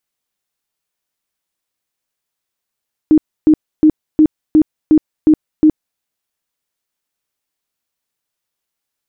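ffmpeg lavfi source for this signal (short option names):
-f lavfi -i "aevalsrc='0.596*sin(2*PI*309*mod(t,0.36))*lt(mod(t,0.36),21/309)':d=2.88:s=44100"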